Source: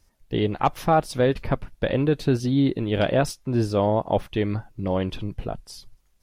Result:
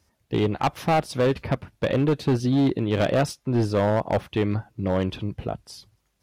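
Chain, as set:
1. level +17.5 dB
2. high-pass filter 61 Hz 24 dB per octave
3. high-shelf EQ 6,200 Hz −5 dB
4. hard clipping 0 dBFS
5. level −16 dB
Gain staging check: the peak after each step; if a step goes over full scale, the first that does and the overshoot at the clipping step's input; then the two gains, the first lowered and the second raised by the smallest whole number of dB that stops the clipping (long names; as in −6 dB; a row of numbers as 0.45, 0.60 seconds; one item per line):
+9.5, +10.0, +10.0, 0.0, −16.0 dBFS
step 1, 10.0 dB
step 1 +7.5 dB, step 5 −6 dB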